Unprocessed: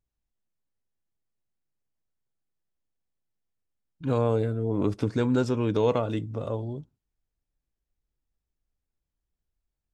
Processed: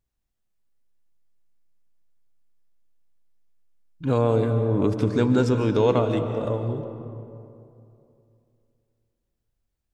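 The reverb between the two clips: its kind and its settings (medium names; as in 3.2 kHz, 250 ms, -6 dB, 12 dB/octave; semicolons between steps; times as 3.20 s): algorithmic reverb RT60 2.7 s, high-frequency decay 0.45×, pre-delay 105 ms, DRR 7 dB; trim +3.5 dB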